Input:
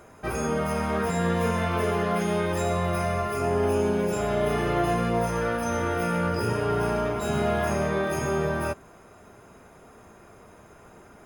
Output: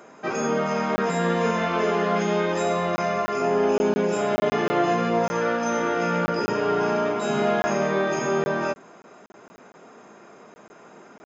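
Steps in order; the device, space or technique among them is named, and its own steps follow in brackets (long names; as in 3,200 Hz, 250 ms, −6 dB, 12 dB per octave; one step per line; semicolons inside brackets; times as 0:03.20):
call with lost packets (high-pass filter 180 Hz 24 dB per octave; downsampling to 16,000 Hz; dropped packets of 20 ms random)
level +3.5 dB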